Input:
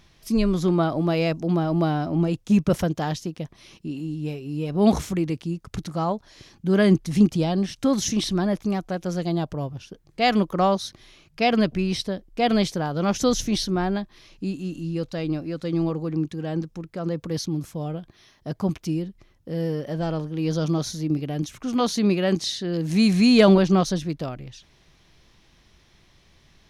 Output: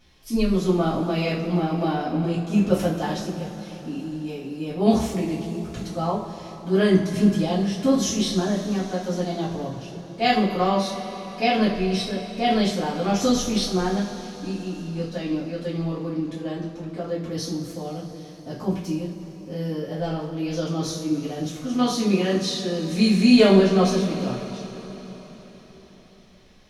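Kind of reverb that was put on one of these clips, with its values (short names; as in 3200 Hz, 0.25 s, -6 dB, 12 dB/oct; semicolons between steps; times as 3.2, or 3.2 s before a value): two-slope reverb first 0.39 s, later 4.8 s, from -18 dB, DRR -9 dB; gain -9 dB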